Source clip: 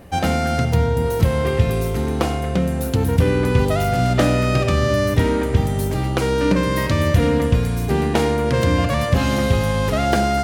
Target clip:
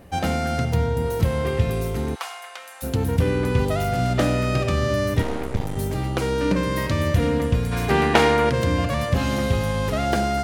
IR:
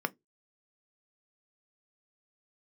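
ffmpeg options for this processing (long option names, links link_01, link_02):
-filter_complex "[0:a]asplit=3[link_01][link_02][link_03];[link_01]afade=type=out:start_time=2.14:duration=0.02[link_04];[link_02]highpass=frequency=900:width=0.5412,highpass=frequency=900:width=1.3066,afade=type=in:start_time=2.14:duration=0.02,afade=type=out:start_time=2.82:duration=0.02[link_05];[link_03]afade=type=in:start_time=2.82:duration=0.02[link_06];[link_04][link_05][link_06]amix=inputs=3:normalize=0,asettb=1/sr,asplit=3[link_07][link_08][link_09];[link_07]atrim=end=5.224[link_10];[link_08]atrim=start=5.22:end=5.77,asetpts=PTS-STARTPTS,afade=type=in:duration=0.004:curve=qsin,afade=type=out:start_time=0.546:duration=0.004:curve=qsin,aeval=exprs='max(val(0),0)':channel_layout=same[link_11];[link_09]atrim=start=5.766[link_12];[link_10][link_11]acrossfade=duration=0.004:curve1=hsin:curve2=qsin[link_13];[link_13][link_12]acrossfade=duration=0.004:curve1=qsin:curve2=hsin,asplit=3[link_14][link_15][link_16];[link_14]afade=type=out:start_time=7.71:duration=0.02[link_17];[link_15]equalizer=frequency=1700:width=0.34:gain=11.5,afade=type=in:start_time=7.71:duration=0.02,afade=type=out:start_time=8.49:duration=0.02[link_18];[link_16]afade=type=in:start_time=8.49:duration=0.02[link_19];[link_17][link_18][link_19]amix=inputs=3:normalize=0,volume=-4dB"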